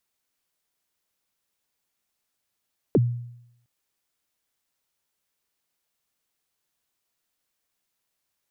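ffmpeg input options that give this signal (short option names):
-f lavfi -i "aevalsrc='0.224*pow(10,-3*t/0.78)*sin(2*PI*(520*0.036/log(120/520)*(exp(log(120/520)*min(t,0.036)/0.036)-1)+120*max(t-0.036,0)))':d=0.71:s=44100"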